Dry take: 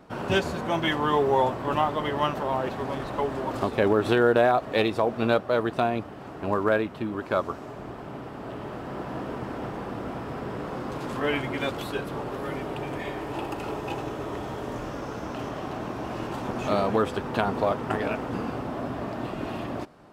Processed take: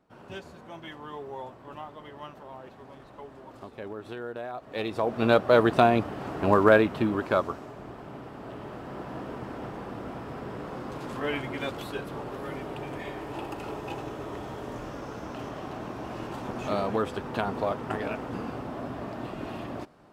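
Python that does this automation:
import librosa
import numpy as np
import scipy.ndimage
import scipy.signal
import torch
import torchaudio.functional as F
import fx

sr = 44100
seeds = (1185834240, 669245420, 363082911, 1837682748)

y = fx.gain(x, sr, db=fx.line((4.48, -17.0), (4.98, -4.0), (5.52, 5.0), (7.04, 5.0), (7.72, -4.0)))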